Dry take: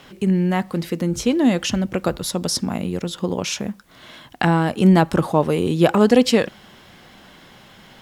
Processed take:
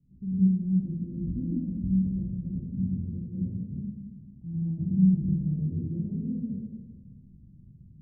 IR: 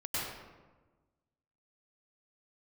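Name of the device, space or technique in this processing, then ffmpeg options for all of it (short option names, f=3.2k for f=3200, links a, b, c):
club heard from the street: -filter_complex "[0:a]alimiter=limit=-12dB:level=0:latency=1:release=340,lowpass=f=180:w=0.5412,lowpass=f=180:w=1.3066[a];[1:a]atrim=start_sample=2205[b];[a][b]afir=irnorm=-1:irlink=0,volume=-4dB"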